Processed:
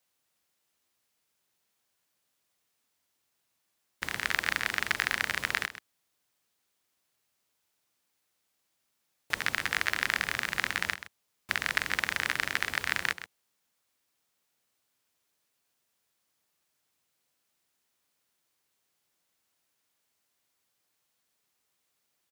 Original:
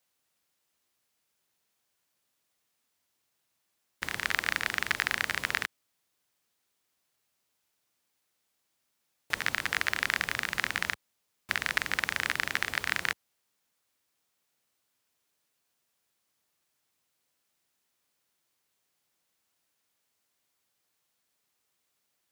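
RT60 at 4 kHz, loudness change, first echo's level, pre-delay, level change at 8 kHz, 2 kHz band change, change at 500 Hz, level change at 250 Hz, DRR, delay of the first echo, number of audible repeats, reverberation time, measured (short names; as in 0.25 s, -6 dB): none, 0.0 dB, -13.0 dB, none, 0.0 dB, 0.0 dB, 0.0 dB, 0.0 dB, none, 0.13 s, 1, none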